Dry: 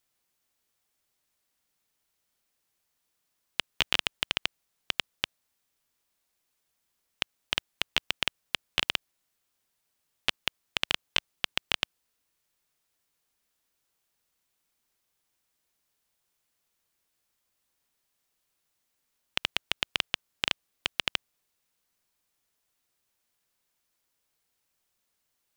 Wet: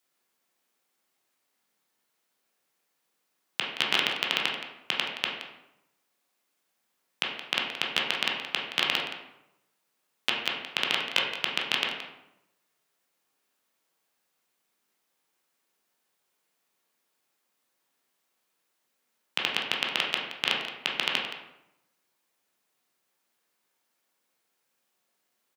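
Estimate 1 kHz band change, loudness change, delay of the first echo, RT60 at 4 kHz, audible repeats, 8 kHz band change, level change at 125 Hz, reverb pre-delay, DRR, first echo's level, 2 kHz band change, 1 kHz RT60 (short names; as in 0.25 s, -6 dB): +5.5 dB, +2.5 dB, 0.172 s, 0.55 s, 1, +0.5 dB, -3.0 dB, 12 ms, -3.0 dB, -12.0 dB, +3.5 dB, 0.85 s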